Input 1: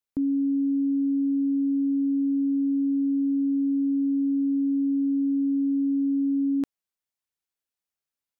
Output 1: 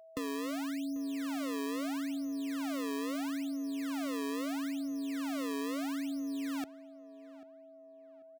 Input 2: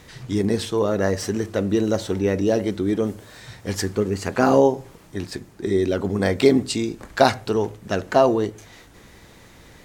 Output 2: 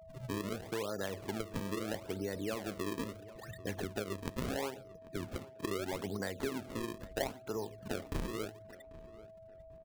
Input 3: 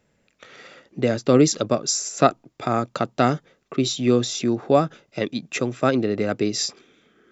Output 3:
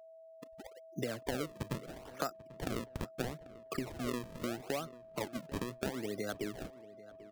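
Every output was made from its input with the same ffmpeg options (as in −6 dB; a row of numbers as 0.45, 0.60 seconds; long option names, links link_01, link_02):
-filter_complex "[0:a]afftfilt=real='re*gte(hypot(re,im),0.0251)':imag='im*gte(hypot(re,im),0.0251)':win_size=1024:overlap=0.75,firequalizer=gain_entry='entry(150,0);entry(1600,9);entry(7100,-20)':delay=0.05:min_phase=1,acrossover=split=130[link_01][link_02];[link_02]acrusher=samples=35:mix=1:aa=0.000001:lfo=1:lforange=56:lforate=0.76[link_03];[link_01][link_03]amix=inputs=2:normalize=0,acompressor=threshold=-29dB:ratio=6,aeval=exprs='val(0)+0.00501*sin(2*PI*650*n/s)':channel_layout=same,asplit=2[link_04][link_05];[link_05]adelay=791,lowpass=frequency=2600:poles=1,volume=-18dB,asplit=2[link_06][link_07];[link_07]adelay=791,lowpass=frequency=2600:poles=1,volume=0.34,asplit=2[link_08][link_09];[link_09]adelay=791,lowpass=frequency=2600:poles=1,volume=0.34[link_10];[link_04][link_06][link_08][link_10]amix=inputs=4:normalize=0,volume=-6.5dB"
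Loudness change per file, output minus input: −12.0, −18.0, −18.5 LU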